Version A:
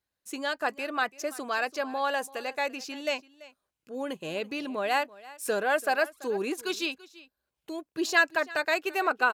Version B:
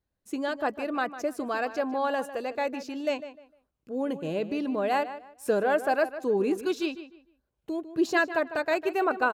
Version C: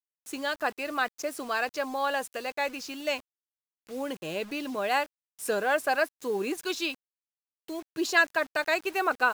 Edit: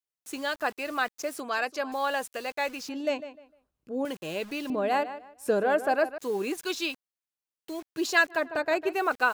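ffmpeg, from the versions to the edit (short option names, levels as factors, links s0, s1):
-filter_complex "[1:a]asplit=3[s0][s1][s2];[2:a]asplit=5[s3][s4][s5][s6][s7];[s3]atrim=end=1.402[s8];[0:a]atrim=start=1.398:end=1.922[s9];[s4]atrim=start=1.918:end=2.892[s10];[s0]atrim=start=2.888:end=4.052[s11];[s5]atrim=start=4.048:end=4.702[s12];[s1]atrim=start=4.698:end=6.182[s13];[s6]atrim=start=6.178:end=8.5[s14];[s2]atrim=start=8.26:end=9.11[s15];[s7]atrim=start=8.87[s16];[s8][s9]acrossfade=d=0.004:c1=hsin:c2=hsin[s17];[s17][s10]acrossfade=d=0.004:c1=hsin:c2=hsin[s18];[s18][s11]acrossfade=d=0.004:c1=hsin:c2=hsin[s19];[s19][s12]acrossfade=d=0.004:c1=hsin:c2=hsin[s20];[s20][s13]acrossfade=d=0.004:c1=hsin:c2=hsin[s21];[s21][s14]acrossfade=d=0.004:c1=hsin:c2=hsin[s22];[s22][s15]acrossfade=d=0.24:c1=tri:c2=tri[s23];[s23][s16]acrossfade=d=0.24:c1=tri:c2=tri"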